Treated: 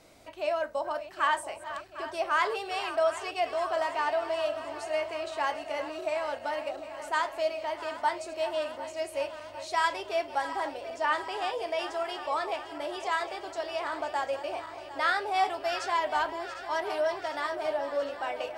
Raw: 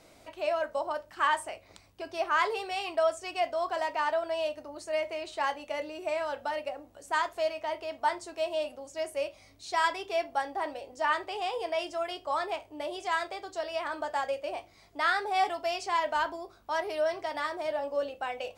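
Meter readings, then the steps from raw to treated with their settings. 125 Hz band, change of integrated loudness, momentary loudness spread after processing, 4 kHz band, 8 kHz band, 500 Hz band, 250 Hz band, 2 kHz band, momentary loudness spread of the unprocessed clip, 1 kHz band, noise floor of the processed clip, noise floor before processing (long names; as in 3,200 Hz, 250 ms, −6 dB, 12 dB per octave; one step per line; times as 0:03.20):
can't be measured, +0.5 dB, 8 LU, +0.5 dB, +0.5 dB, +0.5 dB, +0.5 dB, +0.5 dB, 9 LU, +0.5 dB, −45 dBFS, −58 dBFS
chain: feedback delay that plays each chunk backwards 376 ms, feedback 81%, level −13 dB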